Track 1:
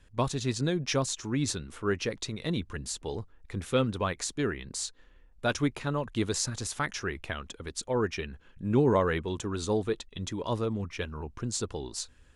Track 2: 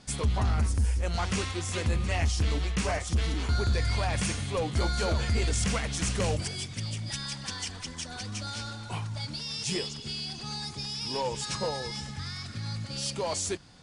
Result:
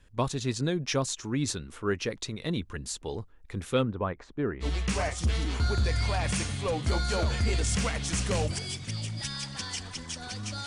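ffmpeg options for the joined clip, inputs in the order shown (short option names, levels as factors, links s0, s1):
-filter_complex "[0:a]asettb=1/sr,asplit=3[s0][s1][s2];[s0]atrim=end=3.834[s3];[s1]atrim=start=3.83:end=4.66,asetpts=PTS-STARTPTS,afade=t=in:d=0.004:c=qsin,afade=t=out:st=0.826:d=0.004:c=qsin,lowpass=1400[s4];[s2]atrim=start=4.656[s5];[s3][s4]acrossfade=d=0.004:c1=hsin:c2=qsin[s6];[s6][s5]acrossfade=d=0.004:c1=qsin:c2=hsin,apad=whole_dur=10.66,atrim=end=10.66,atrim=end=4.66,asetpts=PTS-STARTPTS[s7];[1:a]atrim=start=2.49:end=8.55,asetpts=PTS-STARTPTS[s8];[s7][s8]acrossfade=d=0.06:c1=tri:c2=tri"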